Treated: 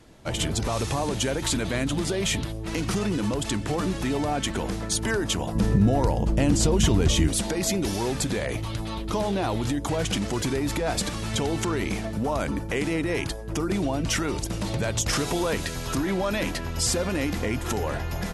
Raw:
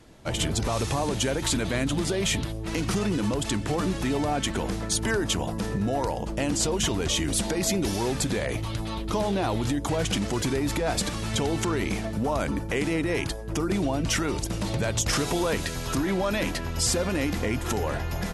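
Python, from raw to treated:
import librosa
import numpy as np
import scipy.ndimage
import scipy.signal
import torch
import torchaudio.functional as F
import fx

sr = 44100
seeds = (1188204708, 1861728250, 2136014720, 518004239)

y = fx.low_shelf(x, sr, hz=280.0, db=11.0, at=(5.55, 7.28))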